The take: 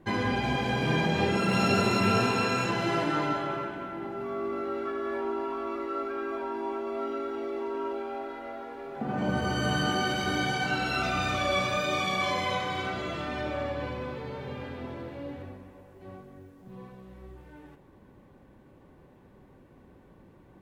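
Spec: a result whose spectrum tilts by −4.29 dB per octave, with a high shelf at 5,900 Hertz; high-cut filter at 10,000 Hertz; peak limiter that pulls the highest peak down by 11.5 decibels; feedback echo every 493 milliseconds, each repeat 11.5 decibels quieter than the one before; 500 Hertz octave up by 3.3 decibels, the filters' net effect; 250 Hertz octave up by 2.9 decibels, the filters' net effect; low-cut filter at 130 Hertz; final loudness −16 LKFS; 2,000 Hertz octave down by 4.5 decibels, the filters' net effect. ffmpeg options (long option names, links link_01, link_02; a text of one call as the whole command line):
ffmpeg -i in.wav -af "highpass=130,lowpass=10000,equalizer=frequency=250:width_type=o:gain=3.5,equalizer=frequency=500:width_type=o:gain=3.5,equalizer=frequency=2000:width_type=o:gain=-7.5,highshelf=frequency=5900:gain=5.5,alimiter=limit=-23dB:level=0:latency=1,aecho=1:1:493|986|1479:0.266|0.0718|0.0194,volume=16dB" out.wav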